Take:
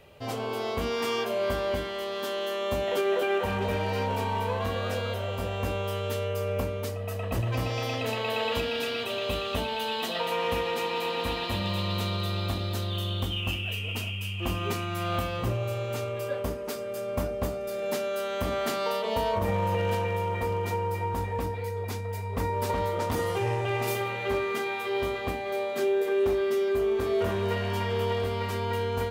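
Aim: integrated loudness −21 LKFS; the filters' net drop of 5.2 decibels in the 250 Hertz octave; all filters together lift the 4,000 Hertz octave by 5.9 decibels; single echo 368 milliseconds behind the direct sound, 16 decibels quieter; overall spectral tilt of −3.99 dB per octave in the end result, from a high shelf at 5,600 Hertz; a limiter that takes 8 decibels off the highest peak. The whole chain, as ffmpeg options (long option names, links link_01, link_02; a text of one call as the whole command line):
ffmpeg -i in.wav -af "equalizer=frequency=250:width_type=o:gain=-8.5,equalizer=frequency=4000:width_type=o:gain=6,highshelf=frequency=5600:gain=5.5,alimiter=limit=-22dB:level=0:latency=1,aecho=1:1:368:0.158,volume=9.5dB" out.wav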